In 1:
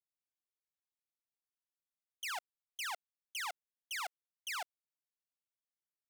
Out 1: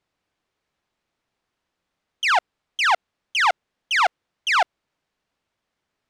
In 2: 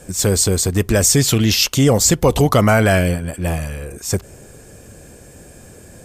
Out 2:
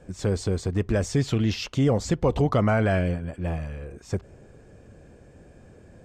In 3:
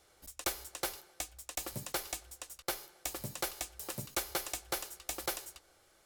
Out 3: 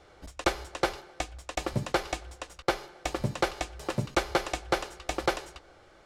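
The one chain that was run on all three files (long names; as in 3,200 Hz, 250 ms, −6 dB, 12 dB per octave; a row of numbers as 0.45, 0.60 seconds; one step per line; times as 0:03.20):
head-to-tape spacing loss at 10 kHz 23 dB
normalise the peak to −12 dBFS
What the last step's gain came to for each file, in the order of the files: +26.0, −7.0, +14.0 decibels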